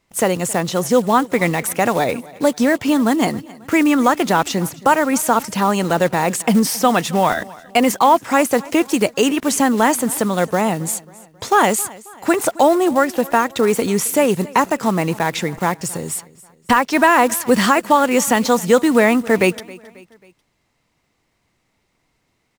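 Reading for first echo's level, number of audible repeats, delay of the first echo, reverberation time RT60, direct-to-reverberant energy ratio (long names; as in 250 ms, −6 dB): −21.5 dB, 3, 270 ms, no reverb audible, no reverb audible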